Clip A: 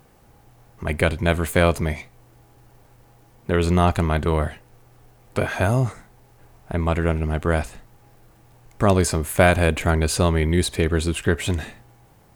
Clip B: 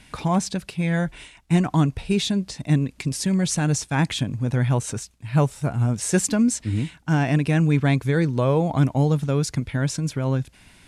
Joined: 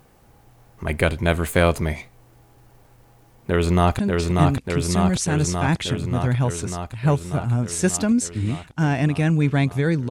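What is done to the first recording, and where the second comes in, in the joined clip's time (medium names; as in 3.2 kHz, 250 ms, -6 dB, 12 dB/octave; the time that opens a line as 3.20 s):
clip A
3.46–3.99 s: echo throw 590 ms, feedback 75%, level -2.5 dB
3.99 s: go over to clip B from 2.29 s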